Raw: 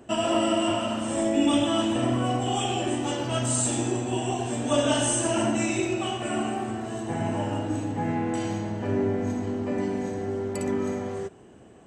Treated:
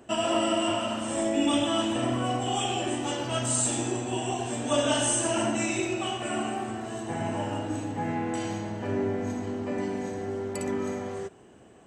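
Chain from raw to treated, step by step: bass shelf 470 Hz -4.5 dB

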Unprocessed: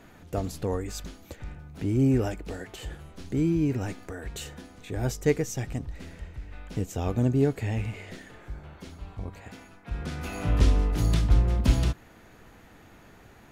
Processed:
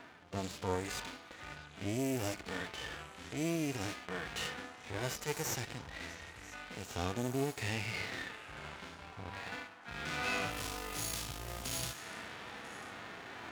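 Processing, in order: companding laws mixed up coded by A; level-controlled noise filter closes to 1.7 kHz, open at -20 dBFS; reverse; upward compressor, threshold -35 dBFS; reverse; saturation -16.5 dBFS, distortion -15 dB; compression 6:1, threshold -33 dBFS, peak gain reduction 13 dB; tilt EQ +4.5 dB/octave; half-wave rectifier; high-pass 51 Hz; on a send: repeats whose band climbs or falls 331 ms, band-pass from 1.1 kHz, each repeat 1.4 oct, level -11 dB; on the sum: harmonic-percussive split percussive -17 dB; trim +14 dB

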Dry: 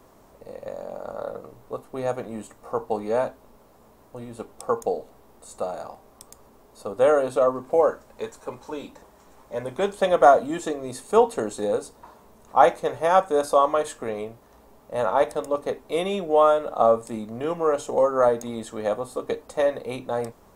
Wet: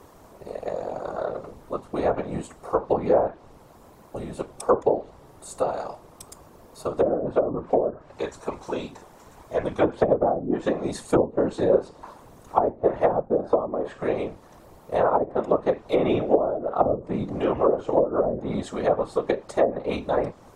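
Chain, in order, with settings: low-pass that closes with the level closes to 310 Hz, closed at -16 dBFS; whisper effect; trim +4 dB

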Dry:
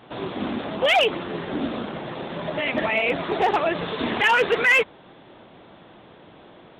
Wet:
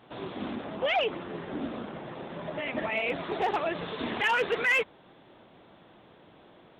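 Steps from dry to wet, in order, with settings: 0.55–2.92 s: Gaussian low-pass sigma 2 samples; trim -7.5 dB

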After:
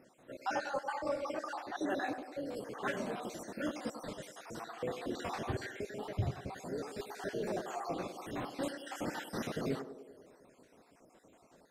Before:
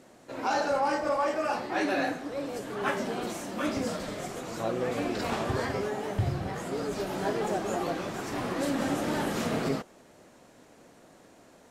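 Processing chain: random holes in the spectrogram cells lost 51%; band-passed feedback delay 99 ms, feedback 68%, band-pass 450 Hz, level -9 dB; trim -6 dB

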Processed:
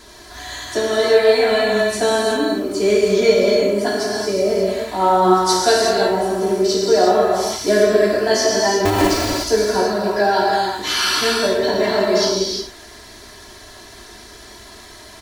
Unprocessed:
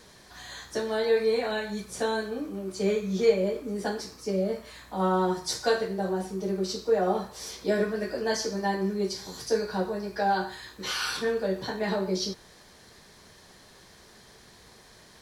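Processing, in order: 8.85–9.43 s: cycle switcher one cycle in 2, inverted; comb 3 ms, depth 87%; gated-style reverb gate 390 ms flat, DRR -2.5 dB; trim +7 dB

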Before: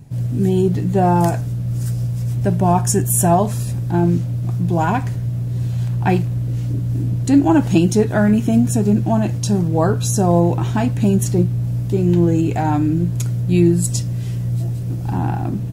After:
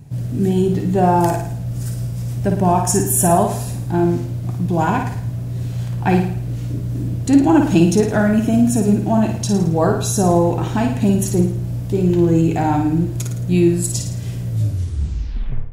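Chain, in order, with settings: tape stop on the ending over 1.23 s; flutter echo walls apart 9.4 m, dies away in 0.58 s

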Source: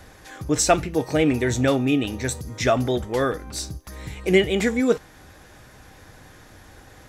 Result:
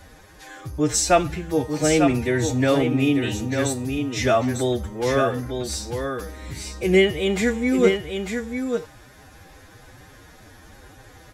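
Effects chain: delay 561 ms -6 dB; time stretch by phase-locked vocoder 1.6×

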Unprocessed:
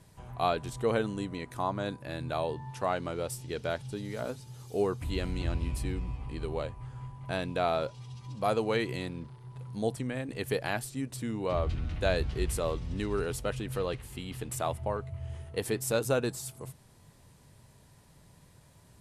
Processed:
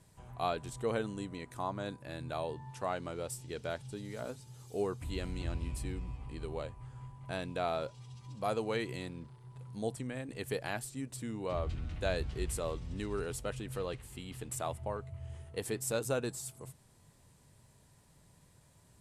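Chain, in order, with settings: peaking EQ 7.9 kHz +5 dB 0.49 oct; trim -5.5 dB

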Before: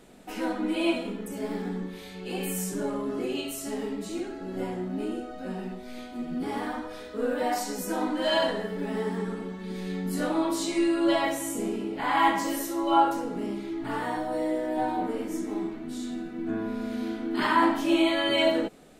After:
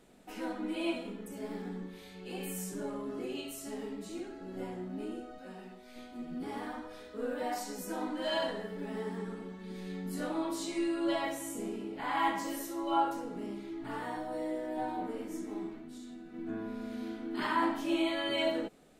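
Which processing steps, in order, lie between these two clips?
5.38–5.96 s: bass shelf 390 Hz -8.5 dB; 15.78–16.34 s: compression, threshold -36 dBFS, peak gain reduction 6 dB; trim -8 dB

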